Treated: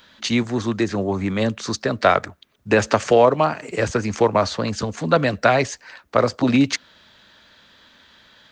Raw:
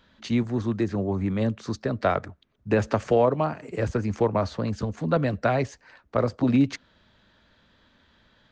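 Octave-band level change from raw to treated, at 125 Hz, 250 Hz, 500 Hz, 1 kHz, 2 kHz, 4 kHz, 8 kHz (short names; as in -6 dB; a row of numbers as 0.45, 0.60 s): +1.0 dB, +3.5 dB, +6.0 dB, +8.0 dB, +10.5 dB, +13.5 dB, n/a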